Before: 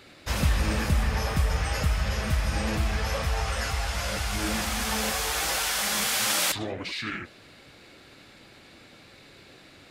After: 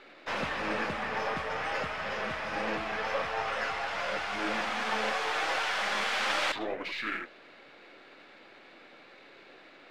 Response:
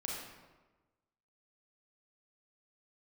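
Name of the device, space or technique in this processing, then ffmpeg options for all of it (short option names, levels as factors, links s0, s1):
crystal radio: -af "highpass=370,lowpass=2600,aeval=exprs='if(lt(val(0),0),0.708*val(0),val(0))':c=same,volume=1.33"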